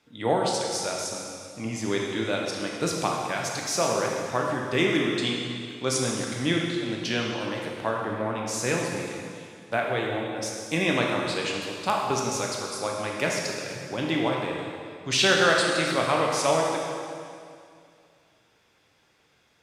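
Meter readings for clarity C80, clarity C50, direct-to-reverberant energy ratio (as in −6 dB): 2.0 dB, 0.5 dB, −1.5 dB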